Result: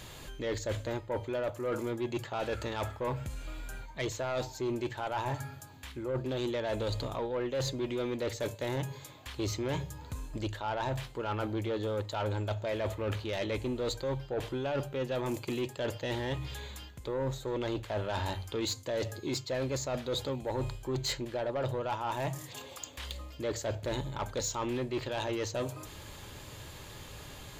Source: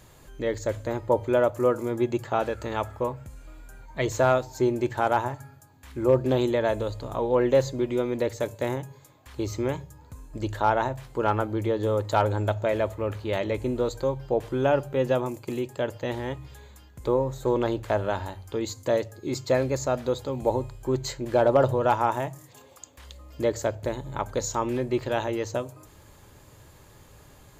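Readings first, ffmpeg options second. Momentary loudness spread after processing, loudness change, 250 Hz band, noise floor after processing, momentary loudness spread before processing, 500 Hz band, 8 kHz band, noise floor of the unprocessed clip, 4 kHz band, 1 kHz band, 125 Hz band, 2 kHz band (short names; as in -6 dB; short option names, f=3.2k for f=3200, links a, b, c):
10 LU, -8.5 dB, -7.5 dB, -49 dBFS, 11 LU, -9.5 dB, -2.0 dB, -53 dBFS, +1.0 dB, -10.0 dB, -5.0 dB, -6.0 dB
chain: -af "equalizer=f=3.3k:w=1:g=8.5,areverse,acompressor=threshold=-31dB:ratio=16,areverse,asoftclip=type=tanh:threshold=-30.5dB,volume=4dB"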